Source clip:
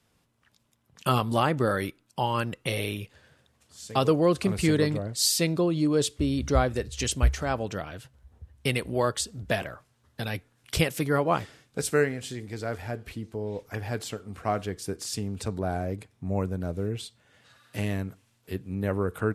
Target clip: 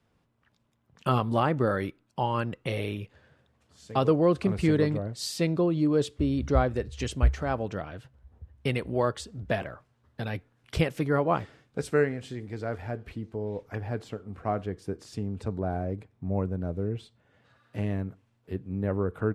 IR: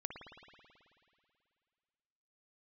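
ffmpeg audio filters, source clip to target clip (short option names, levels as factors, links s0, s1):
-af "asetnsamples=n=441:p=0,asendcmd='13.78 lowpass f 1000',lowpass=f=1700:p=1"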